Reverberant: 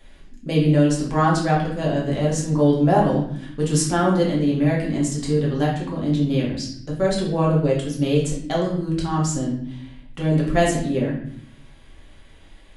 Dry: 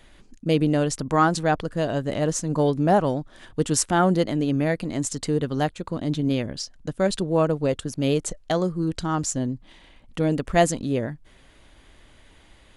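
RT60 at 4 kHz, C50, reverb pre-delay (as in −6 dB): 0.55 s, 5.0 dB, 4 ms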